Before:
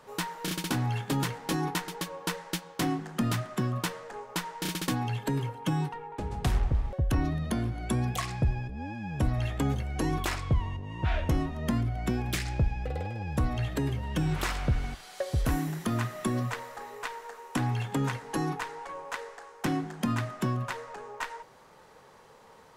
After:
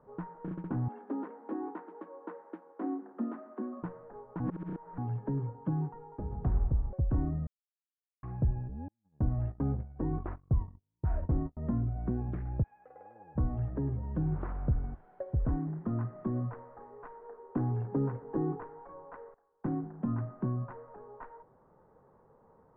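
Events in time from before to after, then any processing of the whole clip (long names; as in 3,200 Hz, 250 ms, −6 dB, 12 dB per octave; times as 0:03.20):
0:00.88–0:03.83: Butterworth high-pass 220 Hz 72 dB per octave
0:04.40–0:04.98: reverse
0:07.47–0:08.23: silence
0:08.88–0:11.57: noise gate −32 dBFS, range −44 dB
0:12.62–0:13.35: high-pass filter 1,400 Hz → 490 Hz
0:14.97–0:15.40: notch filter 1,200 Hz, Q 10
0:17.21–0:18.67: parametric band 400 Hz +7.5 dB 0.75 octaves
0:19.34–0:19.94: noise gate −41 dBFS, range −16 dB
whole clip: low-pass filter 1,400 Hz 24 dB per octave; tilt shelving filter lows +6 dB, about 690 Hz; level −8 dB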